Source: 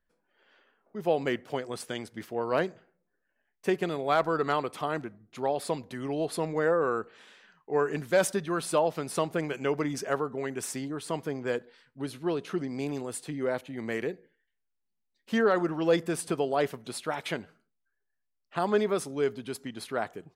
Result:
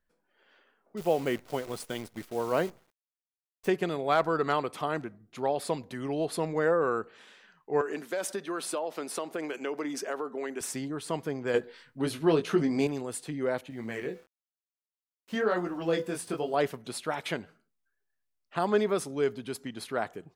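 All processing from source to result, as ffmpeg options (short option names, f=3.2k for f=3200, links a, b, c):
-filter_complex "[0:a]asettb=1/sr,asplit=3[a][b][c];[a]atrim=end=0.974[d];[b]atrim=start=0.97:end=3.68,asetpts=PTS-STARTPTS,afade=t=in:d=0.004:c=qsin,afade=t=out:st=2.706:d=0.004:c=qsin,acrusher=bits=8:dc=4:mix=0:aa=0.000001,equalizer=f=3.5k:t=o:w=2.8:g=-2,bandreject=f=1.7k:w=15[e];[c]atrim=start=3.676[f];[d][e]acrossfade=d=0.004:c1=hsin:c2=qsin[g];[g][f]acrossfade=d=0.004:c1=qsin:c2=hsin,asettb=1/sr,asplit=3[h][i][j];[h]atrim=end=7.814[k];[i]atrim=start=7.81:end=10.61,asetpts=PTS-STARTPTS,afade=t=in:d=0.004:c=qsin,afade=t=out:st=2.796:d=0.004:c=qsin,highpass=f=240:w=0.5412,highpass=f=240:w=1.3066,acompressor=threshold=-29dB:ratio=4:attack=3.2:release=140:knee=1:detection=peak[l];[j]atrim=start=10.606[m];[k][l]acrossfade=d=0.004:c1=hsin:c2=qsin[n];[n][m]acrossfade=d=0.004:c1=qsin:c2=hsin,asettb=1/sr,asplit=3[o][p][q];[o]atrim=end=11.544[r];[p]atrim=start=11.54:end=12.87,asetpts=PTS-STARTPTS,afade=t=in:d=0.004:c=qsin,afade=t=out:st=1.326:d=0.004:c=qsin,acontrast=32,asplit=2[s][t];[t]adelay=19,volume=-6dB[u];[s][u]amix=inputs=2:normalize=0,atrim=end_sample=58653[v];[q]atrim=start=12.866[w];[r][v]acrossfade=d=0.004:c1=hsin:c2=qsin[x];[x][w]acrossfade=d=0.004:c1=qsin:c2=hsin,asettb=1/sr,asplit=3[y][z][aa];[y]atrim=end=13.704[ab];[z]atrim=start=13.7:end=16.54,asetpts=PTS-STARTPTS,afade=t=in:d=0.004:c=qsin,afade=t=out:st=2.836:d=0.004:c=qsin,bandreject=f=250.7:t=h:w=4,bandreject=f=501.4:t=h:w=4,bandreject=f=752.1:t=h:w=4,bandreject=f=1.0028k:t=h:w=4,bandreject=f=1.2535k:t=h:w=4,bandreject=f=1.5042k:t=h:w=4,bandreject=f=1.7549k:t=h:w=4,bandreject=f=2.0056k:t=h:w=4,bandreject=f=2.2563k:t=h:w=4,bandreject=f=2.507k:t=h:w=4,bandreject=f=2.7577k:t=h:w=4,bandreject=f=3.0084k:t=h:w=4,bandreject=f=3.2591k:t=h:w=4,bandreject=f=3.5098k:t=h:w=4,bandreject=f=3.7605k:t=h:w=4,bandreject=f=4.0112k:t=h:w=4,bandreject=f=4.2619k:t=h:w=4,bandreject=f=4.5126k:t=h:w=4,bandreject=f=4.7633k:t=h:w=4,bandreject=f=5.014k:t=h:w=4,bandreject=f=5.2647k:t=h:w=4,bandreject=f=5.5154k:t=h:w=4,bandreject=f=5.7661k:t=h:w=4,bandreject=f=6.0168k:t=h:w=4,bandreject=f=6.2675k:t=h:w=4,bandreject=f=6.5182k:t=h:w=4,bandreject=f=6.7689k:t=h:w=4,aeval=exprs='val(0)*gte(abs(val(0)),0.00237)':c=same,flanger=delay=16:depth=6.2:speed=1[ac];[aa]atrim=start=16.536[ad];[ab][ac]acrossfade=d=0.004:c1=hsin:c2=qsin[ae];[ae][ad]acrossfade=d=0.004:c1=qsin:c2=hsin"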